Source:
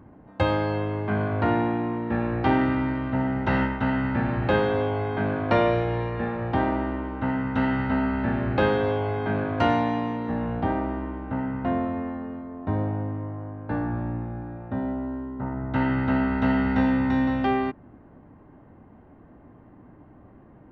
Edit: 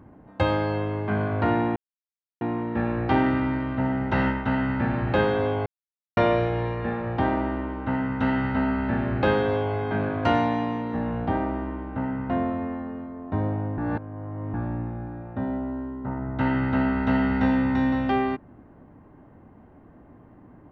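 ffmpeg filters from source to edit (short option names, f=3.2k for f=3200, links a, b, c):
-filter_complex "[0:a]asplit=6[a][b][c][d][e][f];[a]atrim=end=1.76,asetpts=PTS-STARTPTS,afade=t=out:st=1.756:d=0.004:c=hsin,apad=pad_dur=0.65[g];[b]atrim=start=1.76:end=5.01,asetpts=PTS-STARTPTS,afade=t=in:d=0.004:c=hsin,afade=t=out:st=3.246:d=0.004:c=hsin[h];[c]atrim=start=5.01:end=5.52,asetpts=PTS-STARTPTS,volume=0[i];[d]atrim=start=5.52:end=13.132,asetpts=PTS-STARTPTS,afade=t=in:d=0.004:c=hsin[j];[e]atrim=start=13.128:end=13.892,asetpts=PTS-STARTPTS,areverse[k];[f]atrim=start=13.888[l];[g][h][i][j]concat=n=4:v=0:a=1[m];[m][k]acrossfade=d=0.004:c1=hsin:c2=hsin[n];[n][l]acrossfade=d=0.004:c1=hsin:c2=hsin"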